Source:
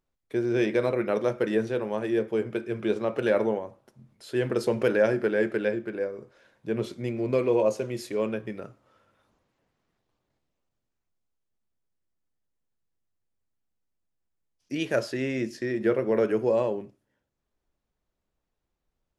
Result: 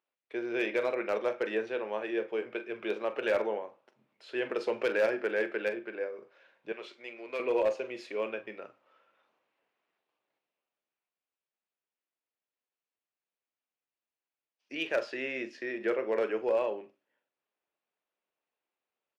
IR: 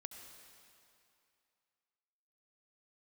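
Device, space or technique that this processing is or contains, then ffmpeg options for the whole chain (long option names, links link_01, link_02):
megaphone: -filter_complex "[0:a]highpass=470,lowpass=3600,equalizer=frequency=2600:width_type=o:width=0.5:gain=6,asoftclip=type=hard:threshold=-19dB,asplit=2[link_01][link_02];[link_02]adelay=43,volume=-13dB[link_03];[link_01][link_03]amix=inputs=2:normalize=0,asettb=1/sr,asplit=3[link_04][link_05][link_06];[link_04]atrim=end=6.724[link_07];[link_05]atrim=start=6.72:end=7.4,asetpts=PTS-STARTPTS,afade=type=in:duration=0.004:curve=qsin,afade=type=out:start_time=0.676:duration=0.004:curve=qsin,highpass=frequency=1000:poles=1[link_08];[link_06]atrim=start=7.396[link_09];[link_07][link_08]acrossfade=duration=0.004:curve1=hsin:curve2=qsin[link_10];[link_10][link_09]acrossfade=duration=0.004:curve1=qsin:curve2=hsin,volume=-2.5dB"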